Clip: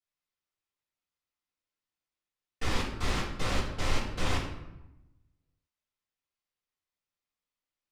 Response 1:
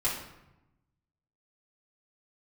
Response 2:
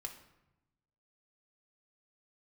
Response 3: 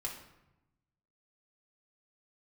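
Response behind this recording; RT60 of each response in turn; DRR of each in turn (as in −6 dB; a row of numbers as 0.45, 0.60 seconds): 1; 0.90, 0.95, 0.90 seconds; −8.0, 3.0, −1.5 decibels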